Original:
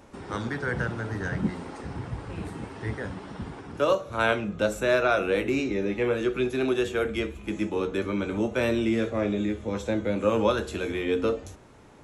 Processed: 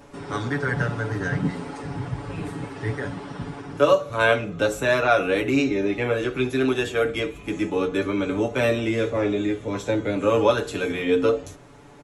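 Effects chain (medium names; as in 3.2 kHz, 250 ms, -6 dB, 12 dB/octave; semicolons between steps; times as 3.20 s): comb 7 ms, depth 75%; trim +2.5 dB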